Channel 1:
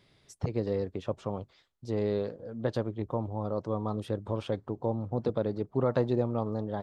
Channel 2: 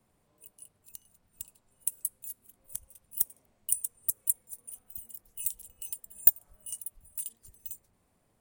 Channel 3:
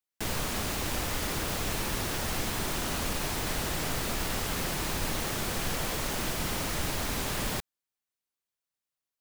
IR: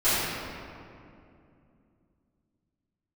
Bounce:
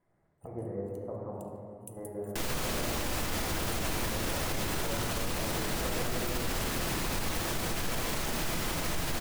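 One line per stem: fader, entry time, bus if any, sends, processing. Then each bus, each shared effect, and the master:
-15.0 dB, 0.00 s, send -9.5 dB, steep low-pass 1900 Hz 48 dB/oct; step gate "xxx..xxxx.x." 168 bpm -12 dB; bell 740 Hz +6.5 dB 0.65 oct
-14.0 dB, 0.00 s, send -23 dB, high shelf 12000 Hz -9.5 dB
0.0 dB, 2.15 s, send -20.5 dB, dry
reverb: on, RT60 2.6 s, pre-delay 3 ms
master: limiter -22.5 dBFS, peak gain reduction 8.5 dB

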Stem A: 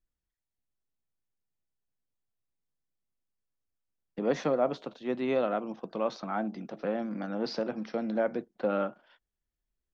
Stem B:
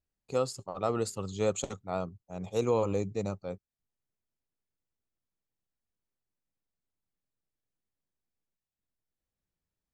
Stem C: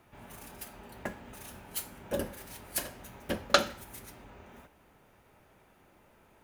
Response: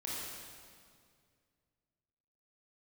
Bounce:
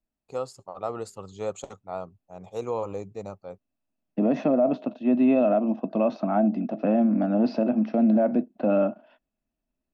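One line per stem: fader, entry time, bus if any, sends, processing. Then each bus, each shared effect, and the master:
-4.5 dB, 0.00 s, bus A, no send, high shelf 3600 Hz -12 dB; small resonant body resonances 250/630/2600 Hz, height 17 dB, ringing for 35 ms
-7.5 dB, 0.00 s, no bus, no send, bell 800 Hz +9 dB 1.8 oct
off
bus A: 0.0 dB, AGC gain up to 5 dB; limiter -13 dBFS, peak gain reduction 9.5 dB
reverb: off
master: dry

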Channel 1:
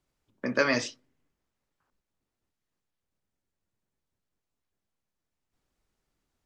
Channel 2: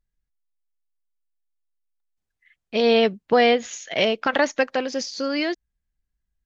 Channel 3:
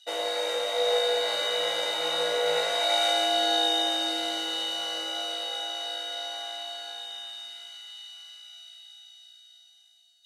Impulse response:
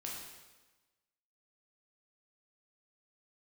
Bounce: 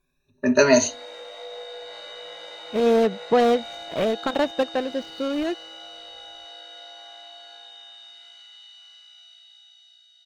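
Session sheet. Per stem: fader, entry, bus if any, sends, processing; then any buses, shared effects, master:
-1.0 dB, 0.00 s, no send, moving spectral ripple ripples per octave 1.8, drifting +0.71 Hz, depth 19 dB; AGC gain up to 5 dB; ripple EQ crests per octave 1.5, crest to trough 17 dB
0.0 dB, 0.00 s, no send, median filter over 25 samples; high shelf 7900 Hz -11.5 dB
-2.0 dB, 0.65 s, no send, compressor 2:1, threshold -42 dBFS, peak gain reduction 11.5 dB; LPF 5800 Hz 12 dB/oct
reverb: off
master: dry

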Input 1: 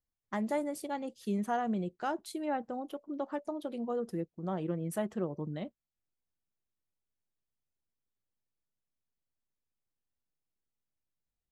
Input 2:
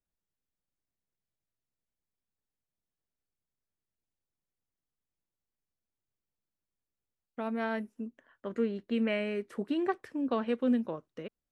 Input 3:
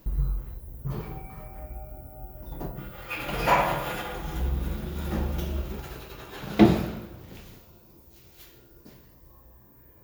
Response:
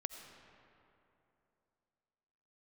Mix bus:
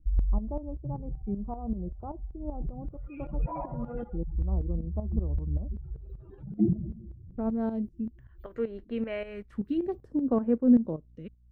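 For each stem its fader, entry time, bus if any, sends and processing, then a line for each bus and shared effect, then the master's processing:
-6.5 dB, 0.00 s, no send, steep low-pass 1200 Hz 72 dB/oct
+1.0 dB, 0.00 s, no send, hum 60 Hz, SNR 34 dB; phaser stages 2, 0.31 Hz, lowest notch 140–3400 Hz
-12.0 dB, 0.00 s, no send, spectral contrast raised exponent 2.8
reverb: off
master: tilt -4 dB/oct; tremolo saw up 5.2 Hz, depth 70%

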